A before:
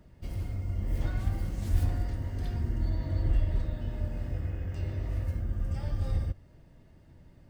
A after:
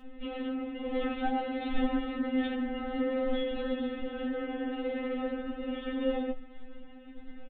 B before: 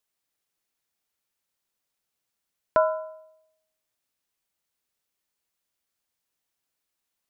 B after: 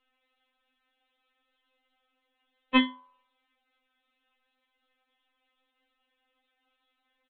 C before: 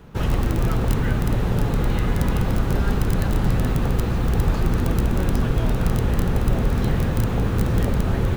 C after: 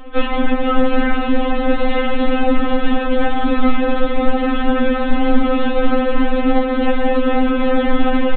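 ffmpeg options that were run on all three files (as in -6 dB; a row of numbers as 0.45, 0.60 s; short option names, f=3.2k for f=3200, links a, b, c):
-filter_complex "[0:a]aresample=8000,aeval=exprs='0.447*sin(PI/2*2.51*val(0)/0.447)':c=same,aresample=44100,asplit=2[a][b];[b]adelay=14,volume=-10dB[c];[a][c]amix=inputs=2:normalize=0,afftfilt=real='re*3.46*eq(mod(b,12),0)':imag='im*3.46*eq(mod(b,12),0)':win_size=2048:overlap=0.75,volume=2.5dB"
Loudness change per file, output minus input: -0.5, -0.5, +4.5 LU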